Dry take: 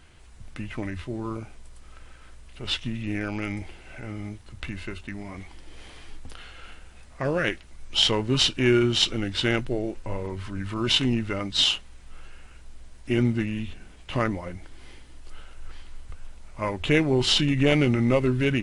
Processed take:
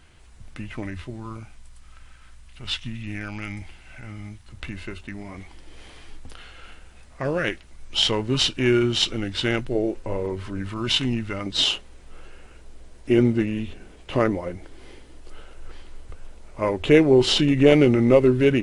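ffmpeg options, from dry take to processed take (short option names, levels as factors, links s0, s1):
-af "asetnsamples=n=441:p=0,asendcmd='1.1 equalizer g -9.5;4.49 equalizer g 1;9.75 equalizer g 7.5;10.69 equalizer g -2;11.46 equalizer g 9',equalizer=f=430:t=o:w=1.4:g=-0.5"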